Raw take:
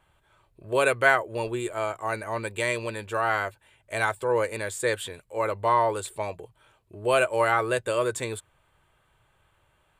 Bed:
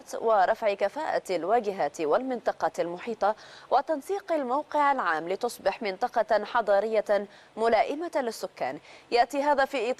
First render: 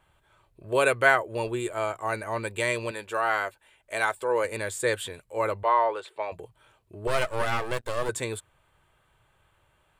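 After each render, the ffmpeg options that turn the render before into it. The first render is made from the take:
-filter_complex "[0:a]asettb=1/sr,asplit=3[s0][s1][s2];[s0]atrim=end=2.914[s3];[s1]atrim=start=2.91:end=4.45,asetpts=PTS-STARTPTS,afade=t=in:d=0.004:c=qsin,afade=t=out:st=1.536:d=0.004:c=qsin,equalizer=f=110:t=o:w=1.8:g=-12[s4];[s2]atrim=start=4.446[s5];[s3][s4]acrossfade=d=0.004:c1=hsin:c2=qsin[s6];[s6][s5]acrossfade=d=0.004:c1=qsin:c2=hsin,asettb=1/sr,asplit=3[s7][s8][s9];[s7]atrim=end=5.634[s10];[s8]atrim=start=5.63:end=6.32,asetpts=PTS-STARTPTS,afade=t=in:d=0.004:c=qsin,afade=t=out:st=0.686:d=0.004:c=qsin,acrossover=split=360 4100:gain=0.0708 1 0.0631[s11][s12][s13];[s11][s12][s13]amix=inputs=3:normalize=0[s14];[s9]atrim=start=6.316[s15];[s10][s14]acrossfade=d=0.004:c1=hsin:c2=qsin[s16];[s16][s15]acrossfade=d=0.004:c1=qsin:c2=hsin,asettb=1/sr,asplit=3[s17][s18][s19];[s17]atrim=end=7.074[s20];[s18]atrim=start=7.07:end=8.09,asetpts=PTS-STARTPTS,afade=t=in:d=0.004:c=qsin,afade=t=out:st=1.016:d=0.004:c=qsin,aeval=exprs='max(val(0),0)':c=same[s21];[s19]atrim=start=8.086[s22];[s20][s21]acrossfade=d=0.004:c1=hsin:c2=qsin[s23];[s23][s22]acrossfade=d=0.004:c1=qsin:c2=hsin"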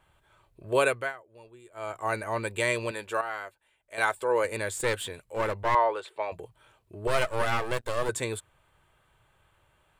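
-filter_complex "[0:a]asettb=1/sr,asplit=3[s0][s1][s2];[s0]atrim=end=4.774[s3];[s1]atrim=start=4.77:end=5.75,asetpts=PTS-STARTPTS,afade=t=in:d=0.004:c=qsin,afade=t=out:st=0.976:d=0.004:c=qsin,aeval=exprs='clip(val(0),-1,0.0299)':c=same[s4];[s2]atrim=start=5.746[s5];[s3][s4]acrossfade=d=0.004:c1=hsin:c2=qsin[s6];[s6][s5]acrossfade=d=0.004:c1=qsin:c2=hsin,asplit=5[s7][s8][s9][s10][s11];[s7]atrim=end=1.13,asetpts=PTS-STARTPTS,afade=t=out:st=0.78:d=0.35:silence=0.0794328[s12];[s8]atrim=start=1.13:end=1.71,asetpts=PTS-STARTPTS,volume=0.0794[s13];[s9]atrim=start=1.71:end=3.212,asetpts=PTS-STARTPTS,afade=t=in:d=0.35:silence=0.0794328[s14];[s10]atrim=start=3.208:end=3.982,asetpts=PTS-STARTPTS,volume=0.335[s15];[s11]atrim=start=3.978[s16];[s12][s13][s14]concat=n=3:v=0:a=1[s17];[s17][s15]acrossfade=d=0.004:c1=hsin:c2=hsin[s18];[s18][s16]acrossfade=d=0.004:c1=hsin:c2=hsin"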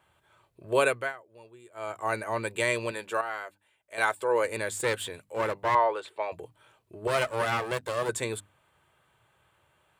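-af "highpass=91,bandreject=f=50:t=h:w=6,bandreject=f=100:t=h:w=6,bandreject=f=150:t=h:w=6,bandreject=f=200:t=h:w=6,bandreject=f=250:t=h:w=6,bandreject=f=300:t=h:w=6"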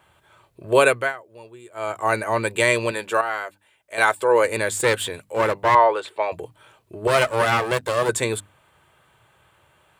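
-af "volume=2.66,alimiter=limit=0.708:level=0:latency=1"

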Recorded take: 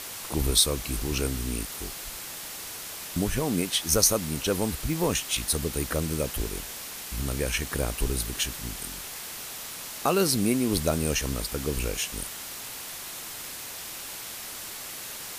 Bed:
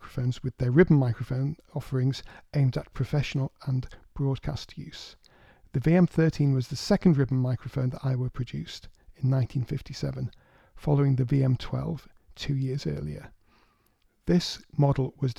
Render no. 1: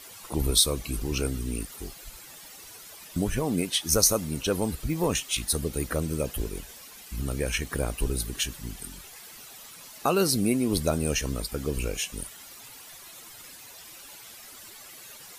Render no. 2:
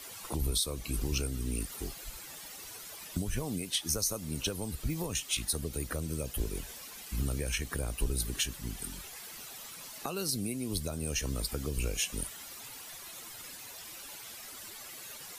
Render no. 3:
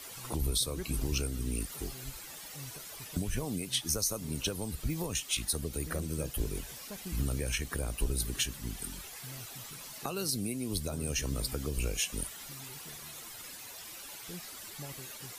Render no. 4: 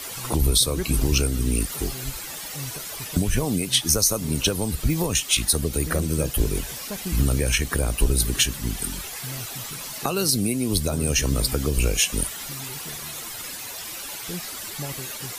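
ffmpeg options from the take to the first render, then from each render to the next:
-af "afftdn=nr=12:nf=-39"
-filter_complex "[0:a]alimiter=limit=0.126:level=0:latency=1:release=477,acrossover=split=130|3000[s0][s1][s2];[s1]acompressor=threshold=0.0178:ratio=6[s3];[s0][s3][s2]amix=inputs=3:normalize=0"
-filter_complex "[1:a]volume=0.0668[s0];[0:a][s0]amix=inputs=2:normalize=0"
-af "volume=3.76"

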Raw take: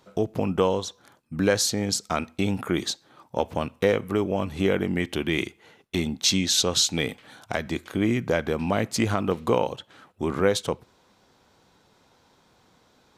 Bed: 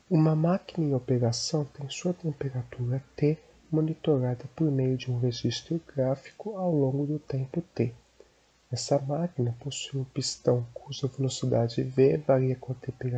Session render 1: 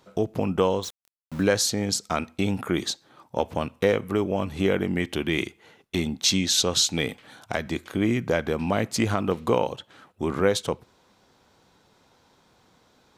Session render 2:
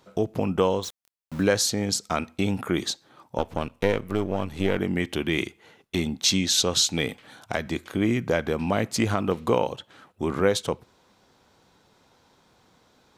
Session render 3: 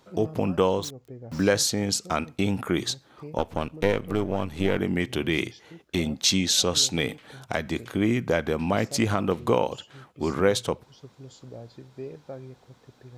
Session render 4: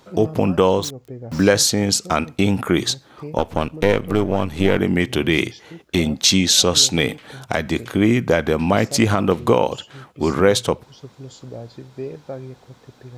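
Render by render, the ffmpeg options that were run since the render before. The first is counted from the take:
-filter_complex "[0:a]asettb=1/sr,asplit=3[s0][s1][s2];[s0]atrim=end=0.834[s3];[s1]atrim=start=0.83:end=1.43,asetpts=PTS-STARTPTS,afade=t=in:d=0.004:c=qsin,afade=t=out:st=0.596:d=0.004:c=qsin,aeval=exprs='val(0)*gte(abs(val(0)),0.015)':c=same[s4];[s2]atrim=start=1.426[s5];[s3][s4]acrossfade=d=0.004:c1=hsin:c2=qsin[s6];[s6][s5]acrossfade=d=0.004:c1=qsin:c2=hsin"
-filter_complex "[0:a]asettb=1/sr,asplit=3[s0][s1][s2];[s0]atrim=end=3.384[s3];[s1]atrim=start=3.38:end=4.78,asetpts=PTS-STARTPTS,afade=t=in:d=0.004:c=qsin,afade=t=out:st=1.396:d=0.004:c=qsin,aeval=exprs='if(lt(val(0),0),0.447*val(0),val(0))':c=same[s4];[s2]atrim=start=4.776[s5];[s3][s4]acrossfade=d=0.004:c1=hsin:c2=qsin[s6];[s6][s5]acrossfade=d=0.004:c1=qsin:c2=hsin"
-filter_complex "[1:a]volume=0.15[s0];[0:a][s0]amix=inputs=2:normalize=0"
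-af "volume=2.37,alimiter=limit=0.794:level=0:latency=1"

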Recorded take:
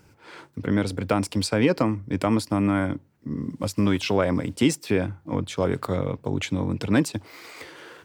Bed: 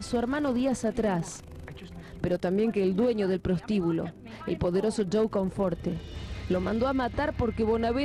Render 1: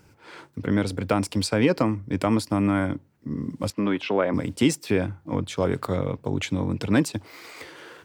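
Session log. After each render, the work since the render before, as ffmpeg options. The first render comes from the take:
-filter_complex "[0:a]asettb=1/sr,asplit=3[s0][s1][s2];[s0]atrim=end=3.704[s3];[s1]atrim=start=3.7:end=4.34,asetpts=PTS-STARTPTS,afade=t=in:d=0.004:c=qsin,afade=t=out:st=0.636:d=0.004:c=qsin,acrossover=split=180 3400:gain=0.1 1 0.1[s4][s5][s6];[s4][s5][s6]amix=inputs=3:normalize=0[s7];[s2]atrim=start=4.336[s8];[s3][s7]acrossfade=d=0.004:c1=hsin:c2=qsin[s9];[s9][s8]acrossfade=d=0.004:c1=qsin:c2=hsin"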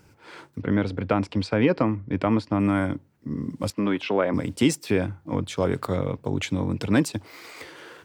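-filter_complex "[0:a]asettb=1/sr,asplit=3[s0][s1][s2];[s0]atrim=end=0.614[s3];[s1]atrim=start=0.61:end=2.6,asetpts=PTS-STARTPTS,afade=t=in:d=0.004:c=qsin,afade=t=out:st=1.986:d=0.004:c=qsin,lowpass=3200[s4];[s2]atrim=start=2.596[s5];[s3][s4]acrossfade=d=0.004:c1=hsin:c2=qsin[s6];[s6][s5]acrossfade=d=0.004:c1=qsin:c2=hsin"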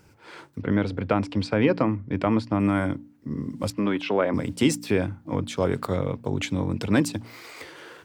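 -af "bandreject=f=58.24:t=h:w=4,bandreject=f=116.48:t=h:w=4,bandreject=f=174.72:t=h:w=4,bandreject=f=232.96:t=h:w=4,bandreject=f=291.2:t=h:w=4"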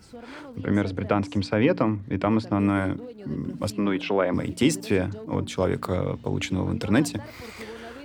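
-filter_complex "[1:a]volume=0.178[s0];[0:a][s0]amix=inputs=2:normalize=0"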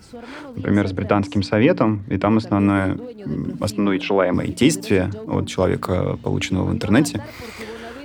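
-af "volume=1.88"

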